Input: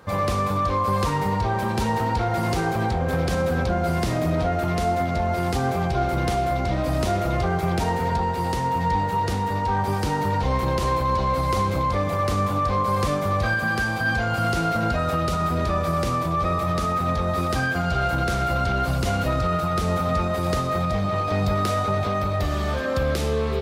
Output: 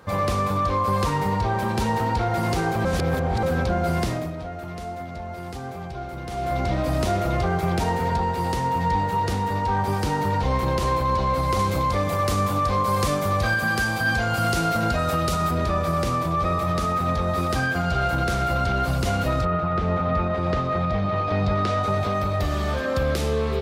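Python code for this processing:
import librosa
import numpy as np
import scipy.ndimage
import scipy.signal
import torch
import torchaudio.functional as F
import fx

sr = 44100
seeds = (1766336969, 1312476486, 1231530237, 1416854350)

y = fx.high_shelf(x, sr, hz=4700.0, db=7.5, at=(11.59, 15.51))
y = fx.lowpass(y, sr, hz=fx.line((19.44, 2100.0), (21.82, 4800.0)), slope=12, at=(19.44, 21.82), fade=0.02)
y = fx.edit(y, sr, fx.reverse_span(start_s=2.85, length_s=0.58),
    fx.fade_down_up(start_s=4.02, length_s=2.57, db=-10.5, fade_s=0.31), tone=tone)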